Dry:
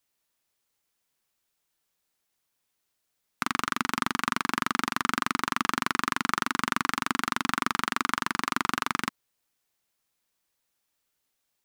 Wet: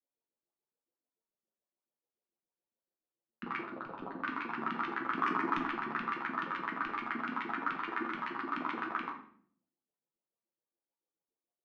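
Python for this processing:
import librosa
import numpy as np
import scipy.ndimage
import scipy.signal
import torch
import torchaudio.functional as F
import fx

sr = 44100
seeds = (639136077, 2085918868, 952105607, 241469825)

y = fx.median_filter(x, sr, points=25, at=(3.63, 4.23))
y = scipy.signal.sosfilt(scipy.signal.butter(2, 110.0, 'highpass', fs=sr, output='sos'), y)
y = fx.env_lowpass(y, sr, base_hz=670.0, full_db=-28.5)
y = scipy.signal.sosfilt(scipy.signal.butter(2, 4200.0, 'lowpass', fs=sr, output='sos'), y)
y = fx.tilt_eq(y, sr, slope=-1.5)
y = fx.leveller(y, sr, passes=2, at=(5.16, 5.63))
y = fx.chorus_voices(y, sr, voices=4, hz=0.26, base_ms=12, depth_ms=3.5, mix_pct=50)
y = fx.filter_lfo_bandpass(y, sr, shape='saw_up', hz=7.0, low_hz=230.0, high_hz=2900.0, q=2.7)
y = fx.echo_feedback(y, sr, ms=80, feedback_pct=41, wet_db=-20.0)
y = fx.room_shoebox(y, sr, seeds[0], volume_m3=70.0, walls='mixed', distance_m=0.69)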